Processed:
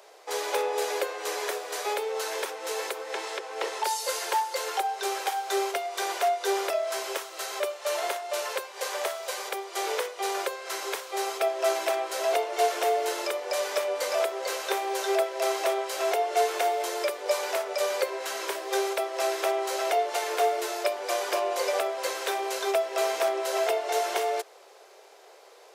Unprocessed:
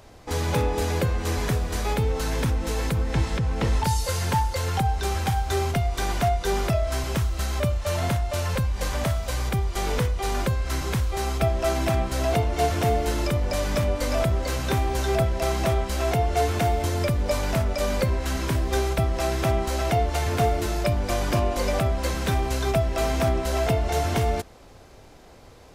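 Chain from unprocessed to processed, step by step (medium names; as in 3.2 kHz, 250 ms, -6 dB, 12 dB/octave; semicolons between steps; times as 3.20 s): Chebyshev high-pass 390 Hz, order 5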